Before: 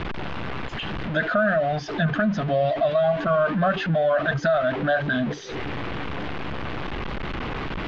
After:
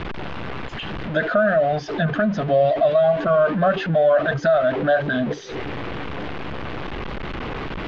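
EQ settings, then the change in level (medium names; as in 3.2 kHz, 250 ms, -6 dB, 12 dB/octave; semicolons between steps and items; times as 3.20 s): dynamic bell 470 Hz, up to +7 dB, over -36 dBFS, Q 1.3; 0.0 dB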